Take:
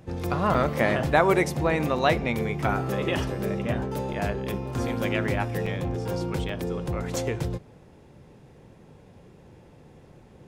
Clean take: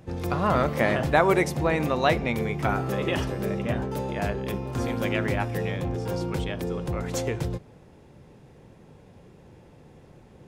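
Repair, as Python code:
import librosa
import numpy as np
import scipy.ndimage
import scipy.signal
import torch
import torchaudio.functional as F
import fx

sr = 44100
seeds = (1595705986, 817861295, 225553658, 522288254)

y = fx.fix_interpolate(x, sr, at_s=(0.54, 1.98, 4.13, 5.66, 6.49, 7.16), length_ms=3.9)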